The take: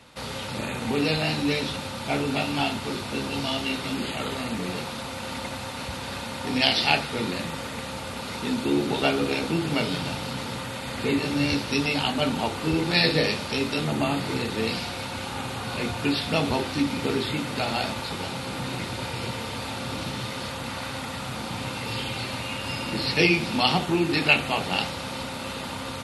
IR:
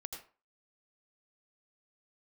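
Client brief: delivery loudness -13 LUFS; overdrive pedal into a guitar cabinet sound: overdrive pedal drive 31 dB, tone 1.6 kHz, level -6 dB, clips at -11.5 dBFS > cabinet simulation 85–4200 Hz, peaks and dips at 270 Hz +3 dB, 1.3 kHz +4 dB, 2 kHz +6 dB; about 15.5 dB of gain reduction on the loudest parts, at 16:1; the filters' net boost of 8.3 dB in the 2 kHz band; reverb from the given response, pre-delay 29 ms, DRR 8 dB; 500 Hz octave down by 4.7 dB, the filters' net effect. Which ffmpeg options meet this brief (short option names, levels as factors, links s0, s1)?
-filter_complex "[0:a]equalizer=f=500:t=o:g=-7,equalizer=f=2000:t=o:g=7.5,acompressor=threshold=0.0562:ratio=16,asplit=2[s0][s1];[1:a]atrim=start_sample=2205,adelay=29[s2];[s1][s2]afir=irnorm=-1:irlink=0,volume=0.531[s3];[s0][s3]amix=inputs=2:normalize=0,asplit=2[s4][s5];[s5]highpass=f=720:p=1,volume=35.5,asoftclip=type=tanh:threshold=0.266[s6];[s4][s6]amix=inputs=2:normalize=0,lowpass=f=1600:p=1,volume=0.501,highpass=85,equalizer=f=270:t=q:w=4:g=3,equalizer=f=1300:t=q:w=4:g=4,equalizer=f=2000:t=q:w=4:g=6,lowpass=f=4200:w=0.5412,lowpass=f=4200:w=1.3066,volume=1.88"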